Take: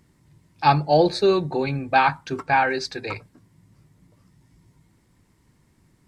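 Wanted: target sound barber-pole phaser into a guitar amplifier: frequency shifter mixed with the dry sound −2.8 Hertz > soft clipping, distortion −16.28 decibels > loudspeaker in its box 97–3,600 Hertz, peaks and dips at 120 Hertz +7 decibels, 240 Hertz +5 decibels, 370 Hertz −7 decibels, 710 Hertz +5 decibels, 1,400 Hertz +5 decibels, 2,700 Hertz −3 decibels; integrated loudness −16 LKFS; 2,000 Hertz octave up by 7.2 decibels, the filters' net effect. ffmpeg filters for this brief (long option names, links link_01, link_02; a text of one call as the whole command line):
ffmpeg -i in.wav -filter_complex "[0:a]equalizer=frequency=2000:width_type=o:gain=7.5,asplit=2[link_01][link_02];[link_02]afreqshift=-2.8[link_03];[link_01][link_03]amix=inputs=2:normalize=1,asoftclip=threshold=-11.5dB,highpass=97,equalizer=frequency=120:width_type=q:width=4:gain=7,equalizer=frequency=240:width_type=q:width=4:gain=5,equalizer=frequency=370:width_type=q:width=4:gain=-7,equalizer=frequency=710:width_type=q:width=4:gain=5,equalizer=frequency=1400:width_type=q:width=4:gain=5,equalizer=frequency=2700:width_type=q:width=4:gain=-3,lowpass=frequency=3600:width=0.5412,lowpass=frequency=3600:width=1.3066,volume=7dB" out.wav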